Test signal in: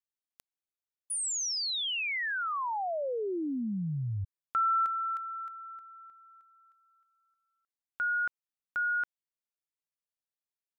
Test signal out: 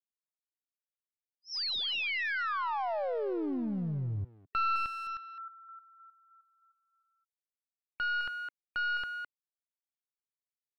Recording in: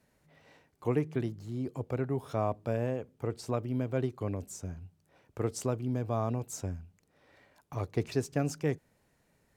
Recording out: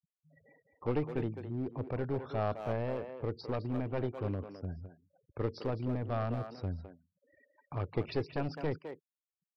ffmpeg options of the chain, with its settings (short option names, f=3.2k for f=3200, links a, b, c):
-filter_complex "[0:a]afftfilt=real='re*gte(hypot(re,im),0.00316)':imag='im*gte(hypot(re,im),0.00316)':win_size=1024:overlap=0.75,aresample=11025,aeval=exprs='clip(val(0),-1,0.0224)':c=same,aresample=44100,asplit=2[a][b];[b]adelay=210,highpass=300,lowpass=3.4k,asoftclip=type=hard:threshold=-28.5dB,volume=-7dB[c];[a][c]amix=inputs=2:normalize=0"